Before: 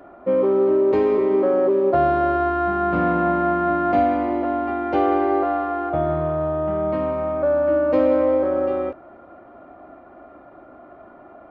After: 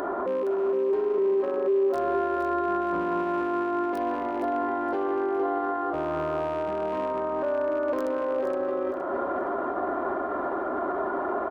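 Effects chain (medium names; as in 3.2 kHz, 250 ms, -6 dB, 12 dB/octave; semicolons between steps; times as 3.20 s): rattle on loud lows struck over -28 dBFS, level -24 dBFS; bass shelf 120 Hz -9 dB; feedback comb 86 Hz, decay 1.3 s, harmonics odd, mix 40%; in parallel at -5.5 dB: integer overflow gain 13 dB; on the sum: graphic EQ with 31 bands 125 Hz -12 dB, 400 Hz +11 dB, 1 kHz +10 dB, 1.6 kHz +6 dB, 2.5 kHz -9 dB; upward compressor, threshold -18 dBFS; peak limiter -26 dBFS, peak gain reduction 23 dB; feedback delay 467 ms, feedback 35%, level -7 dB; trim +4.5 dB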